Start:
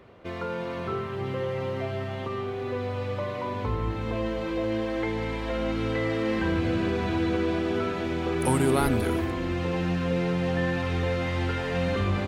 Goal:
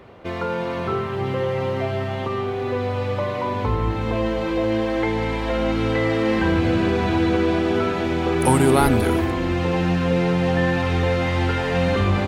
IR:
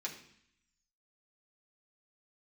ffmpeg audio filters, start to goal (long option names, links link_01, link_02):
-af "equalizer=frequency=830:width=4.7:gain=4,volume=6.5dB"